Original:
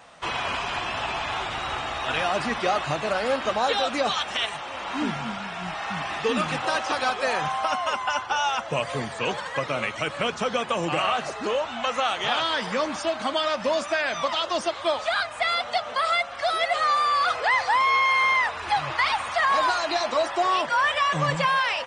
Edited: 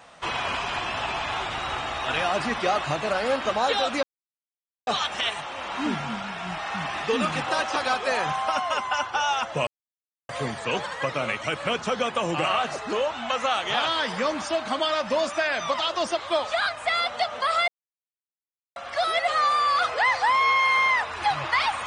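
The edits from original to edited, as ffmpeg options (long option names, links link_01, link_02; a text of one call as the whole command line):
ffmpeg -i in.wav -filter_complex "[0:a]asplit=4[link_01][link_02][link_03][link_04];[link_01]atrim=end=4.03,asetpts=PTS-STARTPTS,afade=type=out:start_time=4.026:duration=0.004:curve=hsin,apad=pad_dur=0.84[link_05];[link_02]atrim=start=4.03:end=8.83,asetpts=PTS-STARTPTS,afade=type=in:duration=0.004:curve=hsin,afade=type=out:start_time=4.796:duration=0.004:curve=hsin,apad=pad_dur=0.62[link_06];[link_03]atrim=start=8.83:end=16.22,asetpts=PTS-STARTPTS,afade=type=in:duration=0.004:curve=hsin,afade=type=out:start_time=7.386:duration=0.004:curve=hsin,apad=pad_dur=1.08[link_07];[link_04]atrim=start=16.22,asetpts=PTS-STARTPTS,afade=type=in:duration=0.004:curve=hsin[link_08];[link_05][link_06][link_07][link_08]concat=n=4:v=0:a=1" out.wav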